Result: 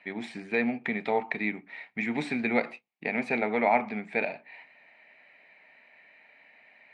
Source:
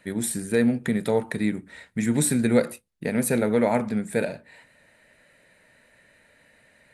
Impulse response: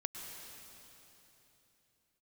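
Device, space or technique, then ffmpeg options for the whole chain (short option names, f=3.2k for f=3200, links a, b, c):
phone earpiece: -af "highpass=350,equalizer=f=350:t=q:w=4:g=-4,equalizer=f=520:t=q:w=4:g=-10,equalizer=f=760:t=q:w=4:g=8,equalizer=f=1.5k:t=q:w=4:g=-7,equalizer=f=2.3k:t=q:w=4:g=10,equalizer=f=3.6k:t=q:w=4:g=-5,lowpass=f=3.8k:w=0.5412,lowpass=f=3.8k:w=1.3066"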